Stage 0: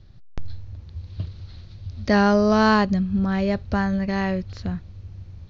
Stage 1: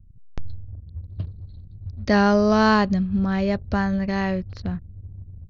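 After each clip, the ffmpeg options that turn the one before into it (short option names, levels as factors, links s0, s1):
-af "anlmdn=0.158"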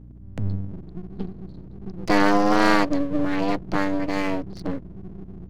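-af "afreqshift=96,aeval=exprs='max(val(0),0)':c=same,aeval=exprs='val(0)+0.00501*(sin(2*PI*60*n/s)+sin(2*PI*2*60*n/s)/2+sin(2*PI*3*60*n/s)/3+sin(2*PI*4*60*n/s)/4+sin(2*PI*5*60*n/s)/5)':c=same,volume=1.41"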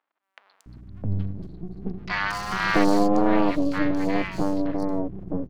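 -filter_complex "[0:a]acrossover=split=1000|4600[s0][s1][s2];[s2]adelay=230[s3];[s0]adelay=660[s4];[s4][s1][s3]amix=inputs=3:normalize=0"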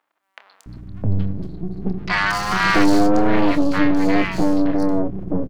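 -filter_complex "[0:a]asoftclip=type=tanh:threshold=0.178,asplit=2[s0][s1];[s1]adelay=27,volume=0.266[s2];[s0][s2]amix=inputs=2:normalize=0,volume=2.51"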